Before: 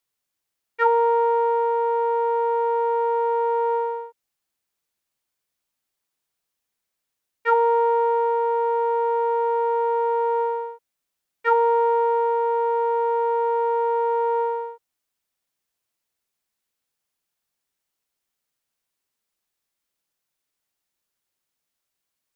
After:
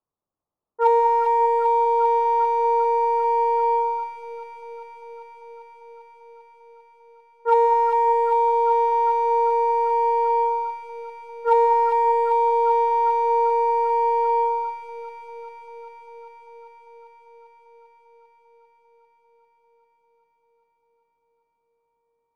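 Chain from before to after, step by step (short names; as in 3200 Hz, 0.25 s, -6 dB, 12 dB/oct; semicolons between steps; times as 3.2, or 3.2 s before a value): steep low-pass 1200 Hz 48 dB/oct; in parallel at -9.5 dB: overloaded stage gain 19 dB; on the sum: echo with dull and thin repeats by turns 0.198 s, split 820 Hz, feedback 88%, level -5 dB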